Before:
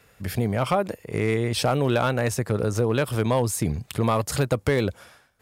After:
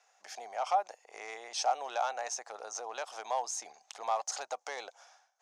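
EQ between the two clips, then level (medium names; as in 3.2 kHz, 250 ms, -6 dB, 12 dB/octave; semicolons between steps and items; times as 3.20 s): ladder high-pass 710 Hz, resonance 75%; resonant low-pass 6.2 kHz, resonance Q 7.2; -3.0 dB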